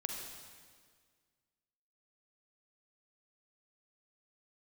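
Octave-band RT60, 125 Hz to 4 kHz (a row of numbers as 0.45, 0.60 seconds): 2.0, 1.9, 1.9, 1.7, 1.7, 1.6 seconds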